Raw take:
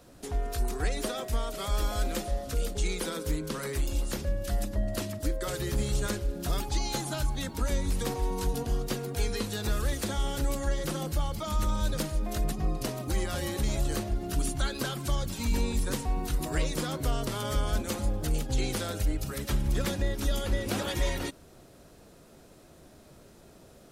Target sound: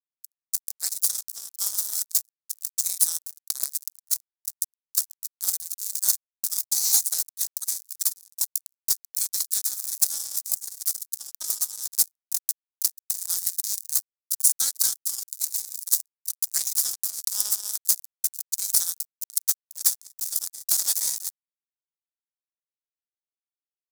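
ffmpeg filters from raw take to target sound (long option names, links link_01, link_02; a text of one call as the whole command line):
ffmpeg -i in.wav -af "highpass=frequency=810:width=0.5412,highpass=frequency=810:width=1.3066,acontrast=69,acrusher=bits=3:mix=0:aa=0.5,aexciter=amount=15.9:drive=5.2:freq=4500,volume=-11.5dB" out.wav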